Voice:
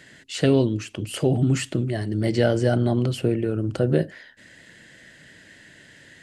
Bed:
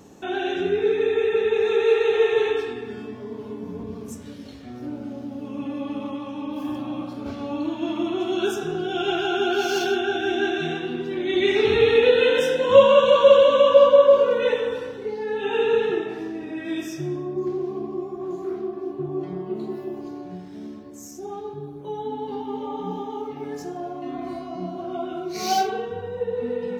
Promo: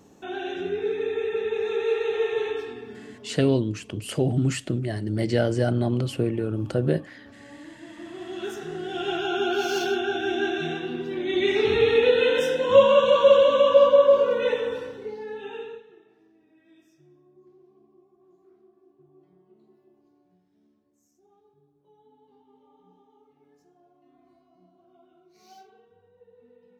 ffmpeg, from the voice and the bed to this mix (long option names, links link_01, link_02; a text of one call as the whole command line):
ffmpeg -i stem1.wav -i stem2.wav -filter_complex "[0:a]adelay=2950,volume=-2.5dB[link_01];[1:a]volume=9dB,afade=type=out:start_time=2.82:duration=0.84:silence=0.266073,afade=type=in:start_time=7.95:duration=1.44:silence=0.177828,afade=type=out:start_time=14.76:duration=1.07:silence=0.0473151[link_02];[link_01][link_02]amix=inputs=2:normalize=0" out.wav